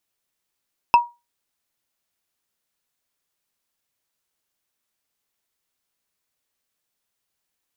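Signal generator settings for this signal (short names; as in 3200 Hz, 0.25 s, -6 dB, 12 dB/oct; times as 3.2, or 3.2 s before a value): wood hit, lowest mode 954 Hz, decay 0.24 s, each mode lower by 9 dB, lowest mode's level -5.5 dB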